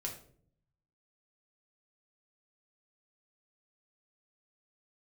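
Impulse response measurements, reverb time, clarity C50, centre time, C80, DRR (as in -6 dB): 0.55 s, 8.5 dB, 22 ms, 12.5 dB, -1.0 dB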